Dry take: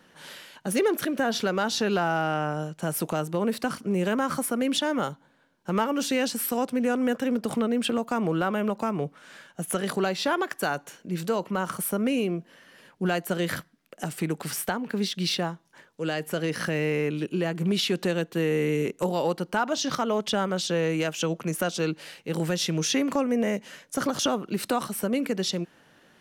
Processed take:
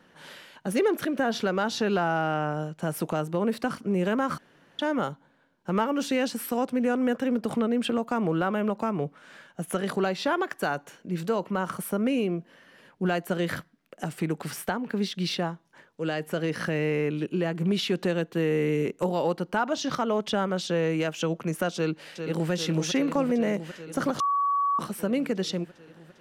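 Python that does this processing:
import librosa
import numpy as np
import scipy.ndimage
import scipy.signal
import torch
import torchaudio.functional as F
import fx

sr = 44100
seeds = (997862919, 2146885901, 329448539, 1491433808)

y = fx.echo_throw(x, sr, start_s=21.75, length_s=0.76, ms=400, feedback_pct=80, wet_db=-7.5)
y = fx.edit(y, sr, fx.room_tone_fill(start_s=4.38, length_s=0.41),
    fx.bleep(start_s=24.2, length_s=0.59, hz=1130.0, db=-21.0), tone=tone)
y = fx.high_shelf(y, sr, hz=4000.0, db=-8.0)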